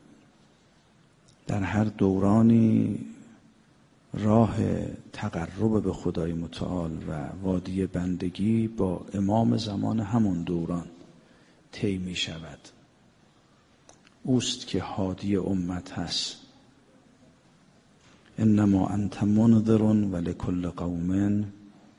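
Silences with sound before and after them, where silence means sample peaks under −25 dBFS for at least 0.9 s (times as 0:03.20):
0:03.02–0:04.14
0:10.79–0:11.83
0:12.32–0:14.28
0:16.29–0:18.39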